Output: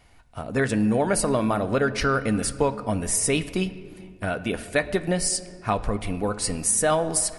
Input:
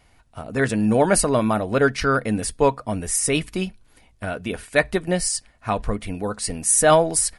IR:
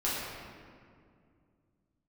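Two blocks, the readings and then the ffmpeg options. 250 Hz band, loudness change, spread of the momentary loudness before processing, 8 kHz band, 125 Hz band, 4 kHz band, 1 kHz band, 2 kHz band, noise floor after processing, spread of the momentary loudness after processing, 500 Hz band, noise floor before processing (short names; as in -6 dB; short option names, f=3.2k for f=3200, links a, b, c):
-2.0 dB, -3.0 dB, 13 LU, -3.0 dB, -1.5 dB, -2.0 dB, -4.0 dB, -3.5 dB, -50 dBFS, 8 LU, -4.0 dB, -57 dBFS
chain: -filter_complex "[0:a]acompressor=threshold=-19dB:ratio=6,asplit=2[a][b];[1:a]atrim=start_sample=2205,lowpass=8.4k[c];[b][c]afir=irnorm=-1:irlink=0,volume=-20dB[d];[a][d]amix=inputs=2:normalize=0"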